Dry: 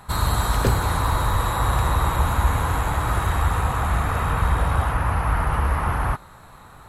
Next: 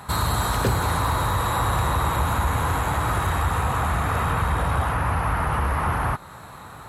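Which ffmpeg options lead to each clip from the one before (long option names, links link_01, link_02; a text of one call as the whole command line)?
ffmpeg -i in.wav -filter_complex "[0:a]asplit=2[link_01][link_02];[link_02]acompressor=threshold=-28dB:ratio=6,volume=2.5dB[link_03];[link_01][link_03]amix=inputs=2:normalize=0,highpass=72,acontrast=80,volume=-9dB" out.wav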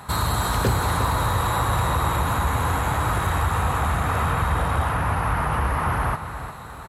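ffmpeg -i in.wav -af "aecho=1:1:356|712|1068|1424:0.299|0.119|0.0478|0.0191" out.wav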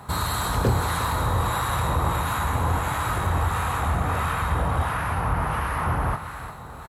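ffmpeg -i in.wav -filter_complex "[0:a]acrossover=split=1000[link_01][link_02];[link_01]aeval=exprs='val(0)*(1-0.5/2+0.5/2*cos(2*PI*1.5*n/s))':channel_layout=same[link_03];[link_02]aeval=exprs='val(0)*(1-0.5/2-0.5/2*cos(2*PI*1.5*n/s))':channel_layout=same[link_04];[link_03][link_04]amix=inputs=2:normalize=0,acrusher=bits=10:mix=0:aa=0.000001,asplit=2[link_05][link_06];[link_06]adelay=24,volume=-10.5dB[link_07];[link_05][link_07]amix=inputs=2:normalize=0" out.wav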